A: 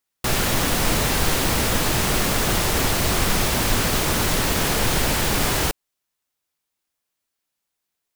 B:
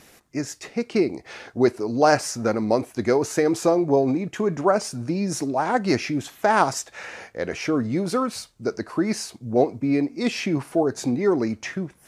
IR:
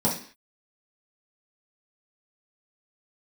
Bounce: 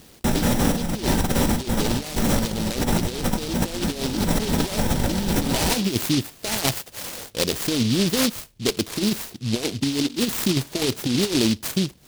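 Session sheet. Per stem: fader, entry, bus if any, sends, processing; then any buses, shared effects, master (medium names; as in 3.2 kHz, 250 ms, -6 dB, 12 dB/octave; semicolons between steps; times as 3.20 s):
-1.5 dB, 0.00 s, send -17.5 dB, auto duck -9 dB, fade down 0.20 s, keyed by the second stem
+0.5 dB, 0.00 s, no send, median filter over 5 samples; delay time shaken by noise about 3.8 kHz, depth 0.27 ms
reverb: on, RT60 0.45 s, pre-delay 3 ms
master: bass shelf 250 Hz +4 dB; compressor with a negative ratio -21 dBFS, ratio -0.5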